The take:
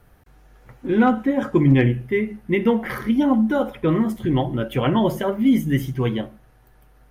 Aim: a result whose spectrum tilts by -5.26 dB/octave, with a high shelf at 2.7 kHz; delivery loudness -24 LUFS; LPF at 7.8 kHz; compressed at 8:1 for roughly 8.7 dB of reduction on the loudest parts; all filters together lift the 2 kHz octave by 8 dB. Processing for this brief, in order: low-pass 7.8 kHz; peaking EQ 2 kHz +7.5 dB; treble shelf 2.7 kHz +5.5 dB; compression 8:1, threshold -20 dBFS; trim +1.5 dB

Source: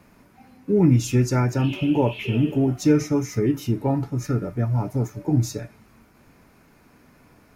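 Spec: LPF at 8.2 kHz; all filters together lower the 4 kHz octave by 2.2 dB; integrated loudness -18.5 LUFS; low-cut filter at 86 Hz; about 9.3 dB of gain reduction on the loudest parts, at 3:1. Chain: high-pass 86 Hz; low-pass 8.2 kHz; peaking EQ 4 kHz -3 dB; compression 3:1, threshold -25 dBFS; trim +10.5 dB

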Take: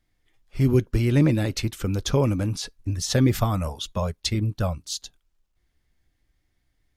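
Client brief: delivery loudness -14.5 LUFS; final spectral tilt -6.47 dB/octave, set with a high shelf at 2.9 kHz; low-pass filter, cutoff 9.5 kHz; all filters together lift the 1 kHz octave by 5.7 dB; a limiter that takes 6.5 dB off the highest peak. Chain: low-pass 9.5 kHz; peaking EQ 1 kHz +7.5 dB; treble shelf 2.9 kHz -4.5 dB; trim +11.5 dB; peak limiter -2.5 dBFS

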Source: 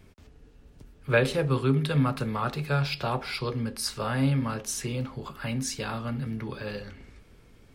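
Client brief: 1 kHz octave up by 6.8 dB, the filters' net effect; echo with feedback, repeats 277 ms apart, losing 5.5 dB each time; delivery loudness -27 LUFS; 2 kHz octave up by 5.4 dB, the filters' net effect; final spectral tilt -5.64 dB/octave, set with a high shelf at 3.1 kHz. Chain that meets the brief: peaking EQ 1 kHz +7.5 dB; peaking EQ 2 kHz +5.5 dB; treble shelf 3.1 kHz -3.5 dB; feedback delay 277 ms, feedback 53%, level -5.5 dB; trim -2 dB

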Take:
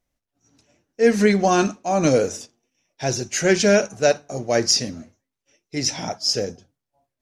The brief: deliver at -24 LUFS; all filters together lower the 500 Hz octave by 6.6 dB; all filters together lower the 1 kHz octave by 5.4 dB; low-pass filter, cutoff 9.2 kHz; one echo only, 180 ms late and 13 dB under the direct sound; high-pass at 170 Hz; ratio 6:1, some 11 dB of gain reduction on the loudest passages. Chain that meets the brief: high-pass 170 Hz; low-pass 9.2 kHz; peaking EQ 500 Hz -7 dB; peaking EQ 1 kHz -4.5 dB; compression 6:1, threshold -26 dBFS; delay 180 ms -13 dB; trim +6.5 dB

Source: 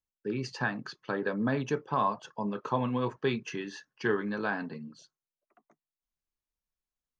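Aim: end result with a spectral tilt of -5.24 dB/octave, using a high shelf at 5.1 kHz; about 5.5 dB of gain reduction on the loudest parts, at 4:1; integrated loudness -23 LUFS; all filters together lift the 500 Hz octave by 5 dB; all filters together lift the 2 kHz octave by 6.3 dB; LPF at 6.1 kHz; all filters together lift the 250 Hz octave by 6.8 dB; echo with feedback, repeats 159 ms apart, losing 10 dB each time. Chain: low-pass 6.1 kHz; peaking EQ 250 Hz +7 dB; peaking EQ 500 Hz +3.5 dB; peaking EQ 2 kHz +9 dB; treble shelf 5.1 kHz -6.5 dB; compression 4:1, threshold -25 dBFS; feedback delay 159 ms, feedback 32%, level -10 dB; trim +8 dB

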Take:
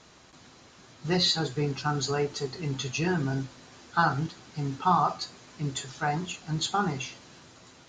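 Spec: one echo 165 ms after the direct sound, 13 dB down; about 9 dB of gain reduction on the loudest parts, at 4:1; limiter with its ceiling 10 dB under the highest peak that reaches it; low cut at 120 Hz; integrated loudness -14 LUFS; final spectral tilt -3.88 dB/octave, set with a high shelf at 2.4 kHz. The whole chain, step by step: high-pass 120 Hz; treble shelf 2.4 kHz +6 dB; compression 4:1, threshold -28 dBFS; peak limiter -26.5 dBFS; delay 165 ms -13 dB; trim +22.5 dB

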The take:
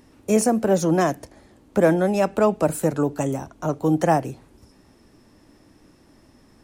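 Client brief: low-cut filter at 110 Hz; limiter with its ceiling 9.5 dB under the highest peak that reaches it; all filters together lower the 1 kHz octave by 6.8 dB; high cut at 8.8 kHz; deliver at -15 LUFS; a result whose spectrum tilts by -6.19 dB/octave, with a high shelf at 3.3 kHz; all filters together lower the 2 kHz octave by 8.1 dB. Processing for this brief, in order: high-pass 110 Hz; low-pass 8.8 kHz; peaking EQ 1 kHz -9 dB; peaking EQ 2 kHz -6 dB; treble shelf 3.3 kHz -4 dB; trim +12.5 dB; peak limiter -4.5 dBFS

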